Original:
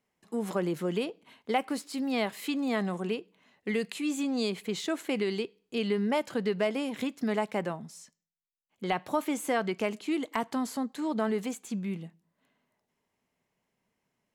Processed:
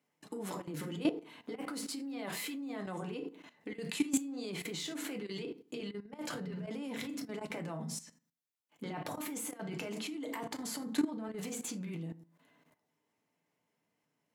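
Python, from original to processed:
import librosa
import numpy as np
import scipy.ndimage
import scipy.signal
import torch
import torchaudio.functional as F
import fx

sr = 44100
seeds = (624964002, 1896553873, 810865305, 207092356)

y = fx.over_compress(x, sr, threshold_db=-35.0, ratio=-0.5)
y = scipy.signal.sosfilt(scipy.signal.butter(4, 110.0, 'highpass', fs=sr, output='sos'), y)
y = fx.rev_fdn(y, sr, rt60_s=0.38, lf_ratio=1.25, hf_ratio=0.6, size_ms=20.0, drr_db=3.0)
y = fx.level_steps(y, sr, step_db=14)
y = F.gain(torch.from_numpy(y), 2.0).numpy()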